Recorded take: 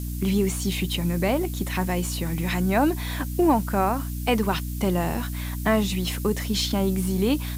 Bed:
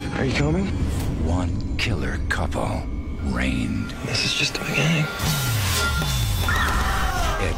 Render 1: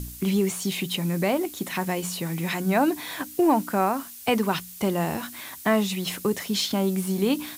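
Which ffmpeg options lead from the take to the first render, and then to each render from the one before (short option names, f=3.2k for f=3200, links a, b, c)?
-af "bandreject=f=60:t=h:w=4,bandreject=f=120:t=h:w=4,bandreject=f=180:t=h:w=4,bandreject=f=240:t=h:w=4,bandreject=f=300:t=h:w=4"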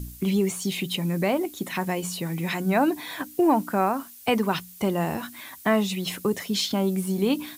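-af "afftdn=nr=6:nf=-42"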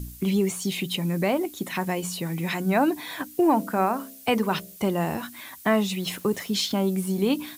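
-filter_complex "[0:a]asettb=1/sr,asplit=3[a][b][c];[a]atrim=end=3.504[d];[b]atrim=start=3.5:end=4.77,asetpts=PTS-STARTPTS,afade=t=in:d=0.004:c=qsin,afade=t=out:st=1.266:d=0.004:c=qsin,bandreject=f=66.8:t=h:w=4,bandreject=f=133.6:t=h:w=4,bandreject=f=200.4:t=h:w=4,bandreject=f=267.2:t=h:w=4,bandreject=f=334:t=h:w=4,bandreject=f=400.8:t=h:w=4,bandreject=f=467.6:t=h:w=4,bandreject=f=534.4:t=h:w=4,bandreject=f=601.2:t=h:w=4,bandreject=f=668:t=h:w=4[e];[c]atrim=start=4.766[f];[d][e]acrossfade=d=0.004:c1=hsin:c2=qsin[g];[g][f]acrossfade=d=0.004:c1=qsin:c2=hsin,asettb=1/sr,asplit=3[h][i][j];[h]atrim=end=5.854[k];[i]atrim=start=5.85:end=6.76,asetpts=PTS-STARTPTS,afade=t=in:d=0.004:c=qsin,afade=t=out:st=0.906:d=0.004:c=qsin,aeval=exprs='val(0)*gte(abs(val(0)),0.00631)':c=same[l];[j]atrim=start=6.756[m];[k][l]acrossfade=d=0.004:c1=hsin:c2=qsin[n];[n][m]acrossfade=d=0.004:c1=qsin:c2=hsin"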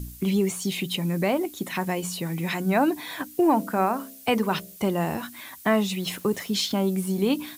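-af anull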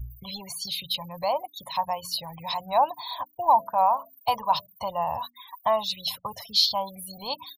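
-af "afftfilt=real='re*gte(hypot(re,im),0.0158)':imag='im*gte(hypot(re,im),0.0158)':win_size=1024:overlap=0.75,firequalizer=gain_entry='entry(120,0);entry(180,-19);entry(370,-30);entry(550,-2);entry(1000,10);entry(1400,-17);entry(2300,-11);entry(4300,11);entry(7800,-15);entry(11000,6)':delay=0.05:min_phase=1"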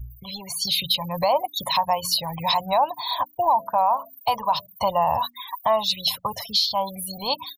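-af "dynaudnorm=f=440:g=3:m=16.5dB,alimiter=limit=-10.5dB:level=0:latency=1:release=290"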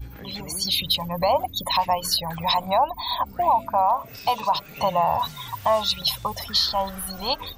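-filter_complex "[1:a]volume=-19dB[a];[0:a][a]amix=inputs=2:normalize=0"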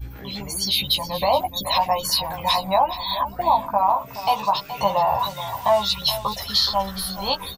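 -filter_complex "[0:a]asplit=2[a][b];[b]adelay=15,volume=-3.5dB[c];[a][c]amix=inputs=2:normalize=0,aecho=1:1:423:0.224"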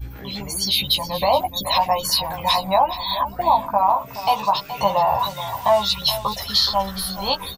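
-af "volume=1.5dB"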